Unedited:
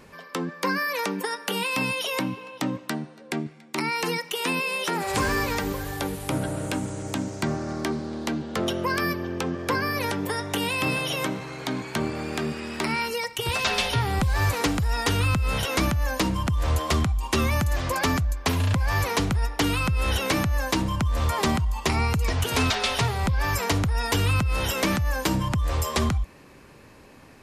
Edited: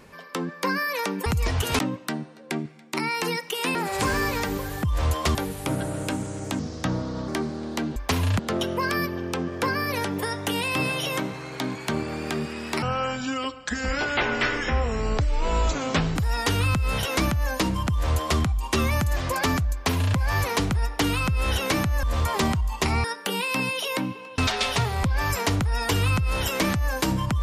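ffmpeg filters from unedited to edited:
-filter_complex "[0:a]asplit=15[s0][s1][s2][s3][s4][s5][s6][s7][s8][s9][s10][s11][s12][s13][s14];[s0]atrim=end=1.262[s15];[s1]atrim=start=22.078:end=22.612[s16];[s2]atrim=start=2.598:end=4.562[s17];[s3]atrim=start=4.898:end=5.982[s18];[s4]atrim=start=16.478:end=17.002[s19];[s5]atrim=start=5.978:end=7.224[s20];[s6]atrim=start=7.22:end=7.78,asetpts=PTS-STARTPTS,asetrate=35721,aresample=44100[s21];[s7]atrim=start=7.776:end=8.462[s22];[s8]atrim=start=18.328:end=18.762[s23];[s9]atrim=start=8.458:end=12.894[s24];[s10]atrim=start=12.89:end=14.76,asetpts=PTS-STARTPTS,asetrate=24696,aresample=44100,atrim=end_sample=147262,asetpts=PTS-STARTPTS[s25];[s11]atrim=start=14.756:end=20.632[s26];[s12]atrim=start=21.068:end=22.082[s27];[s13]atrim=start=1.258:end=2.602[s28];[s14]atrim=start=22.608[s29];[s15][s16]acrossfade=d=0.004:c1=hsin:c2=hsin[s30];[s30][s17]acrossfade=d=0.004:c1=hsin:c2=hsin[s31];[s31][s18]acrossfade=d=0.004:c1=hsin:c2=hsin[s32];[s32][s19]acrossfade=d=0.004:c1=hsin:c2=hsin[s33];[s33][s20]acrossfade=d=0.004:c1=hsin:c2=hsin[s34];[s34][s21]acrossfade=d=0.004:c1=hsin:c2=hsin[s35];[s35][s22]acrossfade=d=0.004:c1=hsin:c2=hsin[s36];[s36][s23]acrossfade=d=0.004:c1=hsin:c2=hsin[s37];[s37][s24]acrossfade=d=0.004:c1=hsin:c2=hsin[s38];[s38][s25]acrossfade=d=0.004:c1=hsin:c2=hsin[s39];[s39][s26]acrossfade=d=0.004:c1=hsin:c2=hsin[s40];[s40][s27]acrossfade=d=0.004:c1=hsin:c2=hsin[s41];[s41][s28]acrossfade=d=0.004:c1=hsin:c2=hsin[s42];[s42][s29]acrossfade=d=0.004:c1=hsin:c2=hsin"

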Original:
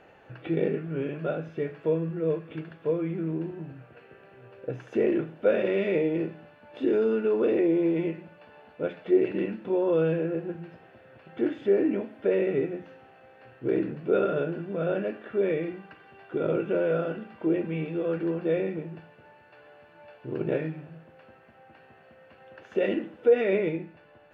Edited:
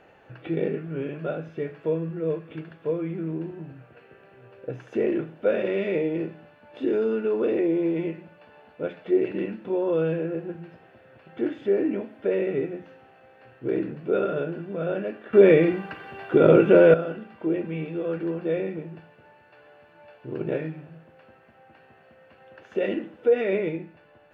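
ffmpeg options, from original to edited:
-filter_complex "[0:a]asplit=3[s0][s1][s2];[s0]atrim=end=15.332[s3];[s1]atrim=start=15.328:end=16.942,asetpts=PTS-STARTPTS,volume=3.76[s4];[s2]atrim=start=16.938[s5];[s3][s4]acrossfade=d=0.004:c1=hsin:c2=hsin[s6];[s6][s5]acrossfade=d=0.004:c1=hsin:c2=hsin"

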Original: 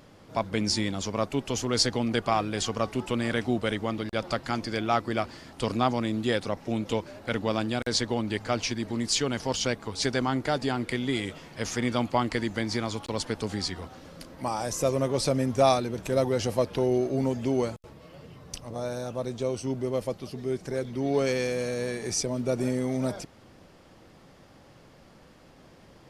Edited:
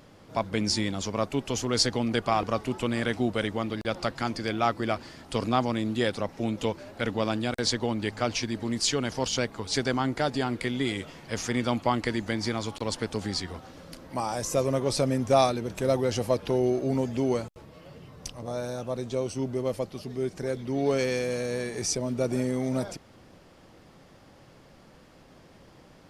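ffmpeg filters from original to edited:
-filter_complex "[0:a]asplit=2[s0][s1];[s0]atrim=end=2.432[s2];[s1]atrim=start=2.708[s3];[s2][s3]acrossfade=d=0.004:c1=hsin:c2=hsin"

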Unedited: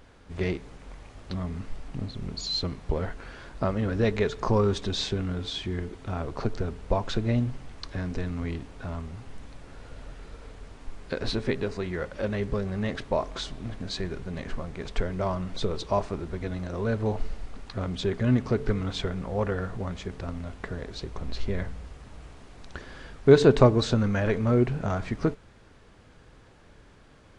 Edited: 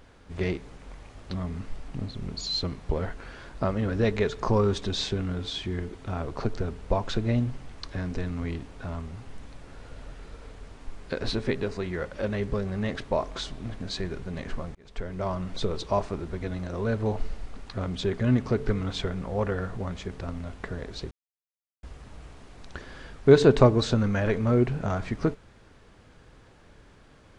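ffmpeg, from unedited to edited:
-filter_complex "[0:a]asplit=4[s0][s1][s2][s3];[s0]atrim=end=14.75,asetpts=PTS-STARTPTS,afade=t=out:st=14.746:d=0.004:c=hsin[s4];[s1]atrim=start=14.75:end=21.11,asetpts=PTS-STARTPTS,afade=t=in:d=0.84:c=qsin,afade=t=out:st=6.356:d=0.004:c=hsin[s5];[s2]atrim=start=21.11:end=21.83,asetpts=PTS-STARTPTS,volume=0[s6];[s3]atrim=start=21.83,asetpts=PTS-STARTPTS,afade=t=in:d=0.004:c=hsin[s7];[s4][s5][s6][s7]concat=n=4:v=0:a=1"

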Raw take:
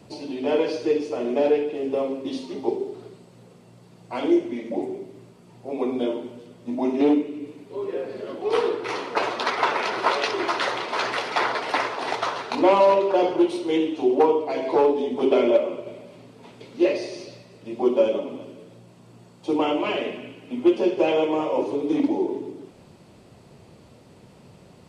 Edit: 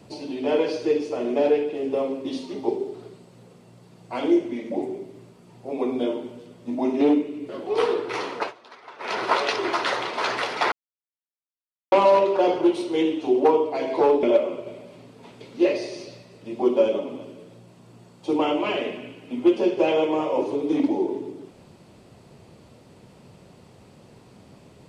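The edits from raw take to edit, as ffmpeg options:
-filter_complex "[0:a]asplit=7[s0][s1][s2][s3][s4][s5][s6];[s0]atrim=end=7.492[s7];[s1]atrim=start=8.238:end=9.28,asetpts=PTS-STARTPTS,afade=t=out:st=0.872:d=0.17:silence=0.0794328[s8];[s2]atrim=start=9.28:end=9.73,asetpts=PTS-STARTPTS,volume=0.0794[s9];[s3]atrim=start=9.73:end=11.47,asetpts=PTS-STARTPTS,afade=t=in:d=0.17:silence=0.0794328,afade=t=out:st=1.736:d=0.004:c=hsin[s10];[s4]atrim=start=11.47:end=12.67,asetpts=PTS-STARTPTS,volume=0[s11];[s5]atrim=start=12.67:end=14.982,asetpts=PTS-STARTPTS,afade=t=in:d=0.004:c=hsin[s12];[s6]atrim=start=15.428[s13];[s8][s9][s10][s11][s12]concat=n=5:v=0:a=1[s14];[s7][s14]acrossfade=d=0.004:c1=hsin:c2=hsin[s15];[s15][s13]acrossfade=d=0.004:c1=hsin:c2=hsin"

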